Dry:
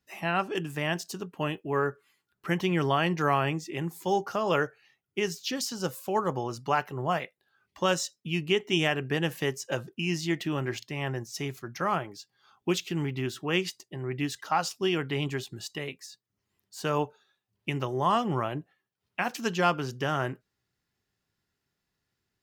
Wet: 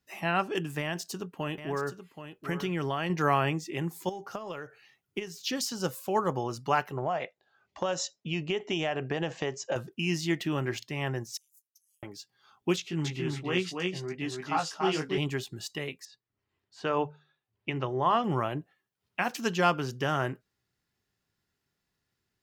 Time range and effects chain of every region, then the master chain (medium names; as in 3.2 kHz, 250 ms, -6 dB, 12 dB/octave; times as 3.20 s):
0.80–3.10 s: compression 2.5:1, threshold -29 dBFS + delay 777 ms -10.5 dB
4.09–5.42 s: compression 2.5:1, threshold -44 dBFS + transient shaper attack +10 dB, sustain +4 dB
6.97–9.76 s: elliptic low-pass 7.2 kHz + peaking EQ 670 Hz +10 dB 1.1 oct + compression 5:1, threshold -26 dBFS
11.37–12.03 s: inverse Chebyshev high-pass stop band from 1.5 kHz, stop band 80 dB + tilt EQ -2 dB/octave
12.76–15.18 s: low-pass 8.5 kHz + chorus 1.2 Hz, delay 16.5 ms, depth 4.5 ms + delay 284 ms -3 dB
16.05–18.24 s: low-pass 3.4 kHz + peaking EQ 190 Hz -6.5 dB 0.49 oct + hum notches 50/100/150/200 Hz
whole clip: none